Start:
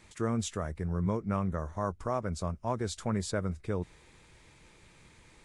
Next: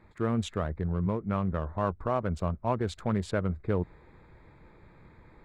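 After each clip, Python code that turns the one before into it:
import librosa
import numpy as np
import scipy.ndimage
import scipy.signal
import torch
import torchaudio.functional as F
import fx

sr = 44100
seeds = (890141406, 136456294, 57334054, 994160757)

y = fx.wiener(x, sr, points=15)
y = fx.high_shelf_res(y, sr, hz=4300.0, db=-8.0, q=1.5)
y = fx.rider(y, sr, range_db=10, speed_s=0.5)
y = F.gain(torch.from_numpy(y), 3.0).numpy()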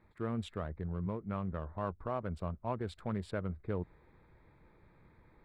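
y = fx.peak_eq(x, sr, hz=6400.0, db=-12.0, octaves=0.37)
y = F.gain(torch.from_numpy(y), -8.0).numpy()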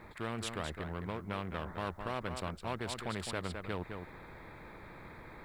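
y = x + 10.0 ** (-11.5 / 20.0) * np.pad(x, (int(211 * sr / 1000.0), 0))[:len(x)]
y = fx.spectral_comp(y, sr, ratio=2.0)
y = F.gain(torch.from_numpy(y), 1.0).numpy()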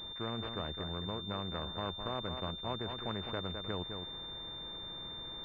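y = fx.pwm(x, sr, carrier_hz=3600.0)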